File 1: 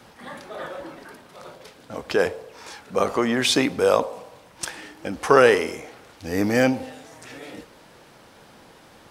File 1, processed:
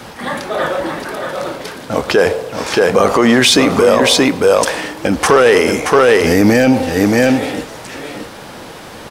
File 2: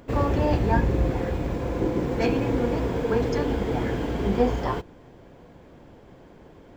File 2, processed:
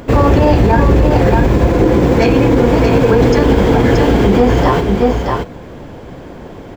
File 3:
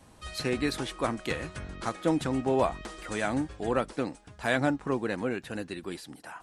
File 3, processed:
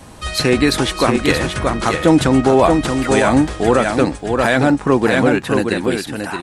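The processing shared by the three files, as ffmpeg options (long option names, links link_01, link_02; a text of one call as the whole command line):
ffmpeg -i in.wav -filter_complex "[0:a]acontrast=79,asplit=2[link_01][link_02];[link_02]aecho=0:1:626:0.501[link_03];[link_01][link_03]amix=inputs=2:normalize=0,alimiter=level_in=10.5dB:limit=-1dB:release=50:level=0:latency=1,volume=-1dB" out.wav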